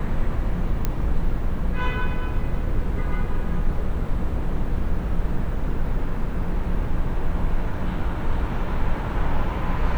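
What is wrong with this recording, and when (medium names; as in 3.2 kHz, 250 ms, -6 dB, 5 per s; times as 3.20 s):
0.85 s: pop -10 dBFS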